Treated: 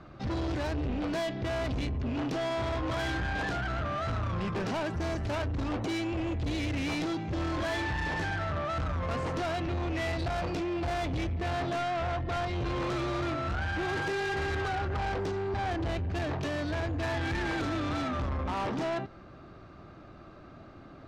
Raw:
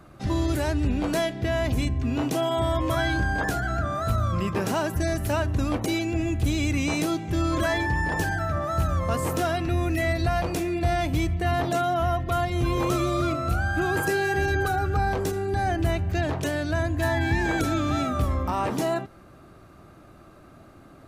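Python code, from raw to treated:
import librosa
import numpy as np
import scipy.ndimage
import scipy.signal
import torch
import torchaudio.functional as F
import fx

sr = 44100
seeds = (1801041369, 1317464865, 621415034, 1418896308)

y = scipy.signal.sosfilt(scipy.signal.butter(4, 5200.0, 'lowpass', fs=sr, output='sos'), x)
y = 10.0 ** (-29.0 / 20.0) * np.tanh(y / 10.0 ** (-29.0 / 20.0))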